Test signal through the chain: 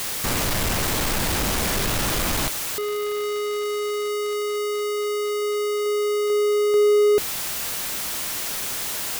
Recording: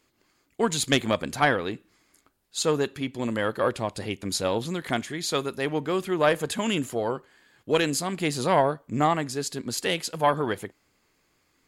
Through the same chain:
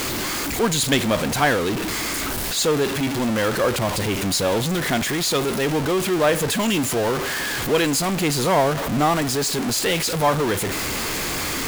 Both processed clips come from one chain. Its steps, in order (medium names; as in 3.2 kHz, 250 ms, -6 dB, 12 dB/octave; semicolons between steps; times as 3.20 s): jump at every zero crossing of -19.5 dBFS